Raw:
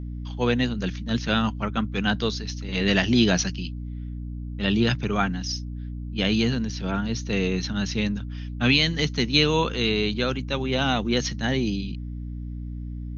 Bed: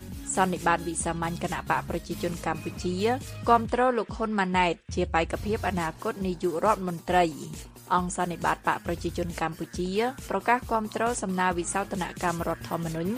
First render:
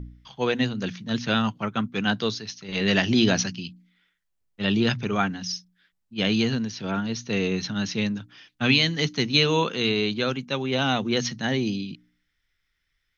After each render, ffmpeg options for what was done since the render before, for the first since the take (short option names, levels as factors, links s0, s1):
-af "bandreject=f=60:t=h:w=4,bandreject=f=120:t=h:w=4,bandreject=f=180:t=h:w=4,bandreject=f=240:t=h:w=4,bandreject=f=300:t=h:w=4"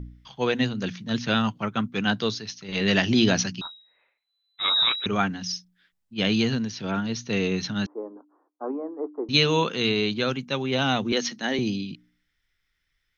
-filter_complex "[0:a]asettb=1/sr,asplit=3[s0][s1][s2];[s0]atrim=end=3.614[s3];[s1]atrim=start=3.61:end=5.06,asetpts=PTS-STARTPTS,afade=t=in:d=0.004:c=qsin,afade=t=out:st=1.446:d=0.004:c=qsin,lowpass=f=3400:t=q:w=0.5098,lowpass=f=3400:t=q:w=0.6013,lowpass=f=3400:t=q:w=0.9,lowpass=f=3400:t=q:w=2.563,afreqshift=-4000[s4];[s2]atrim=start=5.056[s5];[s3][s4]acrossfade=d=0.004:c1=hsin:c2=qsin[s6];[s6][s5]acrossfade=d=0.004:c1=qsin:c2=hsin,asettb=1/sr,asplit=3[s7][s8][s9];[s7]atrim=end=7.864[s10];[s8]atrim=start=7.86:end=9.29,asetpts=PTS-STARTPTS,afade=t=in:d=0.004:c=qsin,afade=t=out:st=1.426:d=0.004:c=qsin,asuperpass=centerf=580:order=12:qfactor=0.69[s11];[s9]atrim=start=9.286[s12];[s10][s11]acrossfade=d=0.004:c1=hsin:c2=qsin[s13];[s13][s12]acrossfade=d=0.004:c1=qsin:c2=hsin,asettb=1/sr,asplit=3[s14][s15][s16];[s14]atrim=end=11.124[s17];[s15]atrim=start=11.12:end=11.59,asetpts=PTS-STARTPTS,afade=t=in:d=0.004:c=qsin,afade=t=out:st=0.466:d=0.004:c=qsin,highpass=f=230:w=0.5412,highpass=f=230:w=1.3066[s18];[s16]atrim=start=11.586[s19];[s17][s18]acrossfade=d=0.004:c1=hsin:c2=qsin[s20];[s20][s19]acrossfade=d=0.004:c1=qsin:c2=hsin"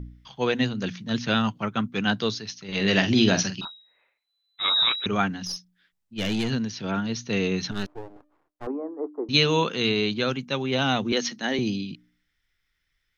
-filter_complex "[0:a]asettb=1/sr,asplit=3[s0][s1][s2];[s0]atrim=end=2.754[s3];[s1]atrim=start=2.75:end=3.65,asetpts=PTS-STARTPTS,afade=t=in:d=0.004:c=qsin,afade=t=out:st=0.896:d=0.004:c=qsin,asplit=2[s4][s5];[s5]adelay=47,volume=0.335[s6];[s4][s6]amix=inputs=2:normalize=0,atrim=end_sample=39690[s7];[s2]atrim=start=3.646[s8];[s3][s7]acrossfade=d=0.004:c1=hsin:c2=qsin[s9];[s9][s8]acrossfade=d=0.004:c1=qsin:c2=hsin,asettb=1/sr,asplit=3[s10][s11][s12];[s10]atrim=end=5.454[s13];[s11]atrim=start=5.45:end=6.5,asetpts=PTS-STARTPTS,afade=t=in:d=0.004:c=qsin,afade=t=out:st=1.046:d=0.004:c=qsin,aeval=exprs='(tanh(11.2*val(0)+0.4)-tanh(0.4))/11.2':c=same[s14];[s12]atrim=start=6.496[s15];[s13][s14]acrossfade=d=0.004:c1=hsin:c2=qsin[s16];[s16][s15]acrossfade=d=0.004:c1=qsin:c2=hsin,asettb=1/sr,asplit=3[s17][s18][s19];[s17]atrim=end=7.714[s20];[s18]atrim=start=7.71:end=8.67,asetpts=PTS-STARTPTS,afade=t=in:d=0.004:c=qsin,afade=t=out:st=0.956:d=0.004:c=qsin,aeval=exprs='max(val(0),0)':c=same[s21];[s19]atrim=start=8.666[s22];[s20][s21]acrossfade=d=0.004:c1=hsin:c2=qsin[s23];[s23][s22]acrossfade=d=0.004:c1=qsin:c2=hsin"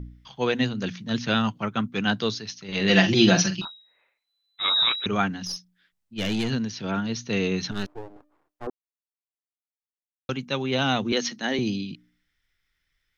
-filter_complex "[0:a]asettb=1/sr,asplit=3[s0][s1][s2];[s0]atrim=end=2.894[s3];[s1]atrim=start=2.89:end=3.62,asetpts=PTS-STARTPTS,afade=t=in:d=0.004:c=qsin,afade=t=out:st=0.726:d=0.004:c=qsin,aecho=1:1:5.8:0.91,atrim=end_sample=32193[s4];[s2]atrim=start=3.616[s5];[s3][s4]acrossfade=d=0.004:c1=hsin:c2=qsin[s6];[s6][s5]acrossfade=d=0.004:c1=qsin:c2=hsin,asplit=3[s7][s8][s9];[s7]atrim=end=8.7,asetpts=PTS-STARTPTS,afade=t=out:st=8.696:d=0.004:c=hsin[s10];[s8]atrim=start=8.7:end=10.29,asetpts=PTS-STARTPTS,volume=0[s11];[s9]atrim=start=10.29,asetpts=PTS-STARTPTS,afade=t=in:d=0.004:c=hsin[s12];[s10][s11][s12]concat=n=3:v=0:a=1"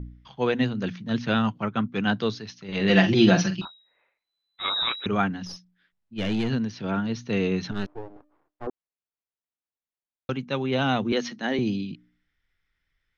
-af "aemphasis=mode=reproduction:type=75fm"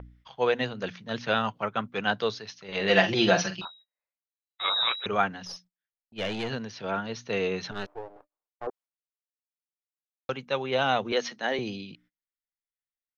-af "agate=range=0.0398:threshold=0.00282:ratio=16:detection=peak,lowshelf=f=380:t=q:w=1.5:g=-8.5"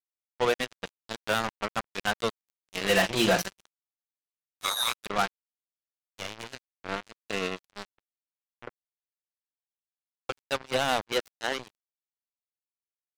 -af "aresample=16000,asoftclip=type=tanh:threshold=0.133,aresample=44100,acrusher=bits=3:mix=0:aa=0.5"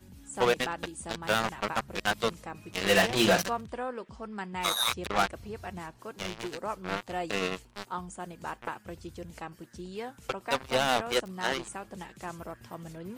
-filter_complex "[1:a]volume=0.251[s0];[0:a][s0]amix=inputs=2:normalize=0"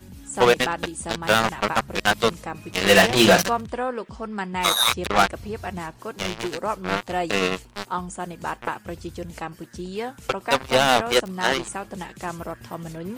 -af "volume=2.66"